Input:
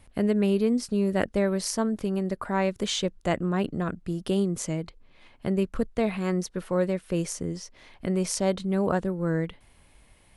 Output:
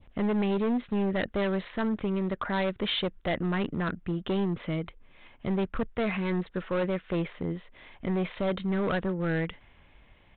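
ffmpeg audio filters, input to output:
-af "adynamicequalizer=threshold=0.00562:dfrequency=1800:dqfactor=0.92:tfrequency=1800:tqfactor=0.92:attack=5:release=100:ratio=0.375:range=3:mode=boostabove:tftype=bell,aresample=8000,volume=24dB,asoftclip=hard,volume=-24dB,aresample=44100"

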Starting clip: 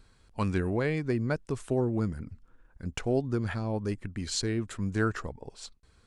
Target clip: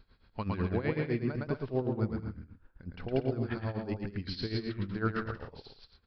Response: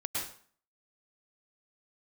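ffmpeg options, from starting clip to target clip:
-af "aecho=1:1:110|187|240.9|278.6|305:0.631|0.398|0.251|0.158|0.1,tremolo=f=7.9:d=0.81,aresample=11025,aresample=44100,volume=-1.5dB"

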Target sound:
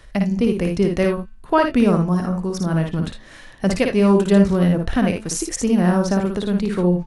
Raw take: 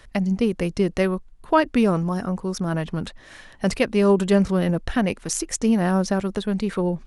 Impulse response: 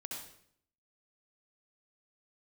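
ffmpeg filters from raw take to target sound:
-filter_complex "[0:a]lowshelf=f=360:g=4,bandreject=f=218.8:t=h:w=4,bandreject=f=437.6:t=h:w=4,bandreject=f=656.4:t=h:w=4,bandreject=f=875.2:t=h:w=4,bandreject=f=1.094k:t=h:w=4,bandreject=f=1.3128k:t=h:w=4,bandreject=f=1.5316k:t=h:w=4,bandreject=f=1.7504k:t=h:w=4,bandreject=f=1.9692k:t=h:w=4,bandreject=f=2.188k:t=h:w=4,bandreject=f=2.4068k:t=h:w=4,bandreject=f=2.6256k:t=h:w=4,bandreject=f=2.8444k:t=h:w=4,bandreject=f=3.0632k:t=h:w=4,bandreject=f=3.282k:t=h:w=4,bandreject=f=3.5008k:t=h:w=4,bandreject=f=3.7196k:t=h:w=4,bandreject=f=3.9384k:t=h:w=4,bandreject=f=4.1572k:t=h:w=4,bandreject=f=4.376k:t=h:w=4,bandreject=f=4.5948k:t=h:w=4,bandreject=f=4.8136k:t=h:w=4,asplit=2[a][b];[b]aecho=0:1:56|79:0.596|0.224[c];[a][c]amix=inputs=2:normalize=0"

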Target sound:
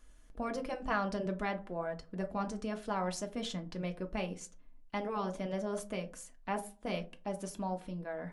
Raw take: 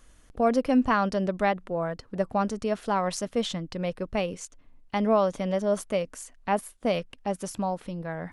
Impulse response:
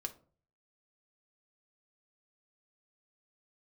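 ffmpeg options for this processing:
-filter_complex "[1:a]atrim=start_sample=2205,asetrate=61740,aresample=44100[a];[0:a][a]afir=irnorm=-1:irlink=0,afftfilt=real='re*lt(hypot(re,im),0.316)':imag='im*lt(hypot(re,im),0.316)':win_size=1024:overlap=0.75,volume=-3dB"

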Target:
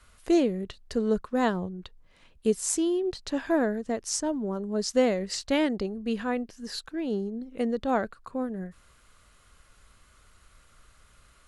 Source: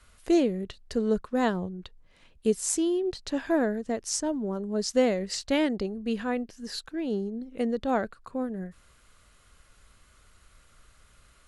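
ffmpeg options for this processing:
-af "equalizer=f=1.1k:t=o:w=0.77:g=2"

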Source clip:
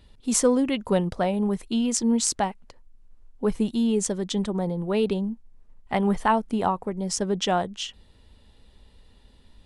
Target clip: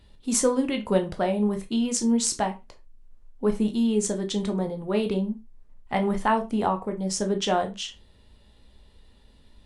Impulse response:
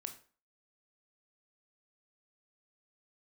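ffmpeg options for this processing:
-filter_complex "[1:a]atrim=start_sample=2205,afade=t=out:st=0.3:d=0.01,atrim=end_sample=13671,asetrate=70560,aresample=44100[a];[0:a][a]afir=irnorm=-1:irlink=0,volume=7dB"

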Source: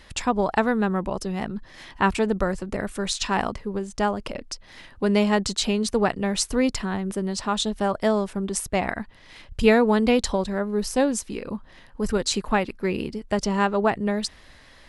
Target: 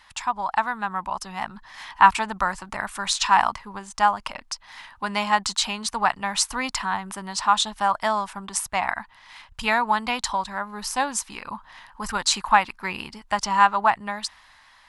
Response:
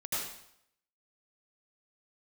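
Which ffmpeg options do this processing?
-af "dynaudnorm=f=180:g=11:m=11.5dB,lowshelf=f=650:t=q:w=3:g=-12,volume=-3.5dB"

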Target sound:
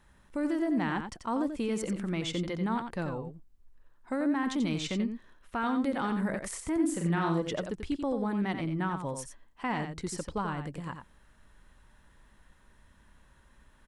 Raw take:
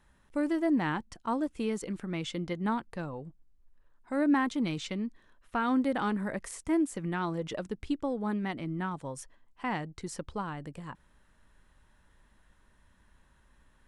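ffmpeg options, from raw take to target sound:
-filter_complex "[0:a]alimiter=level_in=2.5dB:limit=-24dB:level=0:latency=1:release=36,volume=-2.5dB,asplit=3[a][b][c];[a]afade=t=out:st=6.79:d=0.02[d];[b]asplit=2[e][f];[f]adelay=42,volume=-4dB[g];[e][g]amix=inputs=2:normalize=0,afade=t=in:st=6.79:d=0.02,afade=t=out:st=7.4:d=0.02[h];[c]afade=t=in:st=7.4:d=0.02[i];[d][h][i]amix=inputs=3:normalize=0,aecho=1:1:88:0.422,volume=3dB"

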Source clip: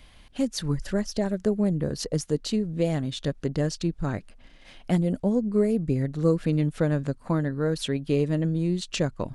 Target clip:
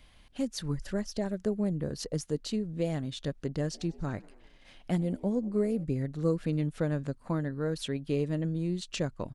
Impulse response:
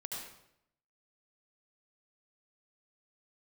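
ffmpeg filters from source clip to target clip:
-filter_complex "[0:a]asplit=3[a][b][c];[a]afade=t=out:st=3.73:d=0.02[d];[b]asplit=5[e][f][g][h][i];[f]adelay=97,afreqshift=75,volume=-24dB[j];[g]adelay=194,afreqshift=150,volume=-28.3dB[k];[h]adelay=291,afreqshift=225,volume=-32.6dB[l];[i]adelay=388,afreqshift=300,volume=-36.9dB[m];[e][j][k][l][m]amix=inputs=5:normalize=0,afade=t=in:st=3.73:d=0.02,afade=t=out:st=5.83:d=0.02[n];[c]afade=t=in:st=5.83:d=0.02[o];[d][n][o]amix=inputs=3:normalize=0,volume=-6dB"

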